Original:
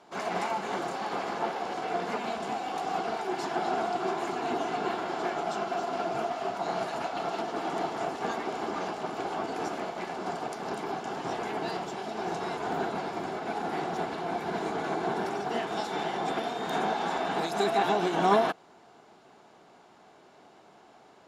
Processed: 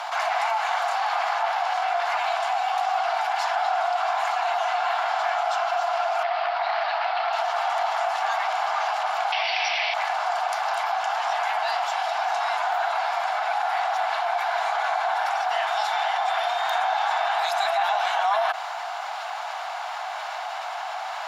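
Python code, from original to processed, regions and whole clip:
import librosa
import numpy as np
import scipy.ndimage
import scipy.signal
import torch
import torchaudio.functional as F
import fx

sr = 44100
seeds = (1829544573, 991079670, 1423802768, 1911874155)

y = fx.chain(x, sr, fx.cheby1_bandpass(low_hz=200.0, high_hz=4700.0, order=4),
    fx.transformer_sat(knee_hz=1200.0), at=(6.23, 7.33))
y = fx.chain(y, sr, fx.cheby1_lowpass(hz=5800.0, order=8),
    fx.high_shelf_res(hz=1800.0, db=8.5, q=3.0), at=(9.32, 9.94))
y = scipy.signal.sosfilt(scipy.signal.ellip(4, 1.0, 50, 710.0, 'highpass', fs=sr, output='sos'), y)
y = fx.peak_eq(y, sr, hz=8300.0, db=-6.5, octaves=1.0)
y = fx.env_flatten(y, sr, amount_pct=70)
y = y * librosa.db_to_amplitude(1.5)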